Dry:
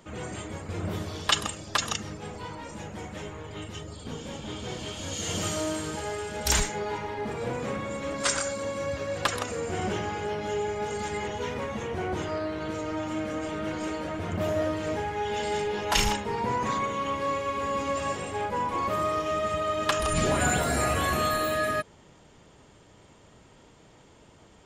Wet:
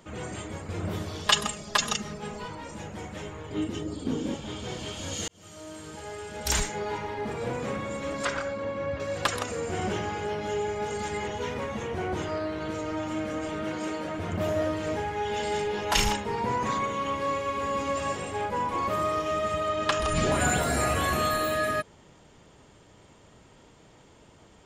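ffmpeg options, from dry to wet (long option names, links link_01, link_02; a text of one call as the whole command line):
ffmpeg -i in.wav -filter_complex "[0:a]asettb=1/sr,asplit=3[link_01][link_02][link_03];[link_01]atrim=end=1.264[link_04];[link_02]atrim=start=1.26:end=2.48,asetpts=PTS-STARTPTS,afade=type=in:duration=0.004:curve=qsin,afade=type=out:start_time=1.216:duration=0.004:curve=qsin,aecho=1:1:4.8:0.65,atrim=end_sample=53802[link_05];[link_03]atrim=start=2.476[link_06];[link_04][link_05]acrossfade=duration=0.004:curve1=hsin:curve2=qsin[link_07];[link_07][link_06]acrossfade=duration=0.004:curve1=qsin:curve2=hsin,asettb=1/sr,asplit=3[link_08][link_09][link_10];[link_08]atrim=end=3.514[link_11];[link_09]atrim=start=3.51:end=4.35,asetpts=PTS-STARTPTS,afade=type=in:duration=0.004:curve=qsin,afade=type=out:start_time=0.836:duration=0.004:curve=qsin,equalizer=frequency=290:width_type=o:width=0.97:gain=15[link_12];[link_10]atrim=start=4.346[link_13];[link_11][link_12]acrossfade=duration=0.004:curve1=hsin:curve2=qsin[link_14];[link_14][link_13]acrossfade=duration=0.004:curve1=qsin:curve2=hsin,asettb=1/sr,asplit=3[link_15][link_16][link_17];[link_15]atrim=end=8.254[link_18];[link_16]atrim=start=8.25:end=9,asetpts=PTS-STARTPTS,afade=type=in:duration=0.004:curve=qsin,afade=type=out:start_time=0.746:duration=0.004:curve=qsin,lowpass=2600[link_19];[link_17]atrim=start=8.996[link_20];[link_18][link_19]acrossfade=duration=0.004:curve1=hsin:curve2=qsin[link_21];[link_21][link_20]acrossfade=duration=0.004:curve1=qsin:curve2=hsin,asettb=1/sr,asplit=3[link_22][link_23][link_24];[link_22]atrim=end=13.634[link_25];[link_23]atrim=start=13.63:end=14.18,asetpts=PTS-STARTPTS,afade=type=in:duration=0.004:curve=qsin,afade=type=out:start_time=0.546:duration=0.004:curve=qsin,highpass=110[link_26];[link_24]atrim=start=14.176[link_27];[link_25][link_26]acrossfade=duration=0.004:curve1=hsin:curve2=qsin[link_28];[link_28][link_27]acrossfade=duration=0.004:curve1=qsin:curve2=hsin,asettb=1/sr,asplit=3[link_29][link_30][link_31];[link_29]atrim=end=19.694[link_32];[link_30]atrim=start=19.69:end=20.32,asetpts=PTS-STARTPTS,afade=type=in:duration=0.004:curve=qsin,afade=type=out:start_time=0.626:duration=0.004:curve=qsin,lowpass=7200[link_33];[link_31]atrim=start=20.316[link_34];[link_32][link_33]acrossfade=duration=0.004:curve1=hsin:curve2=qsin[link_35];[link_35][link_34]acrossfade=duration=0.004:curve1=qsin:curve2=hsin,asplit=2[link_36][link_37];[link_36]atrim=end=5.28,asetpts=PTS-STARTPTS,afade=type=out:start_time=5.276:duration=0.004:curve=hsin[link_38];[link_37]atrim=start=5.28,asetpts=PTS-STARTPTS,afade=type=in:duration=1.63[link_39];[link_38][link_39]concat=n=2:v=0:a=1" out.wav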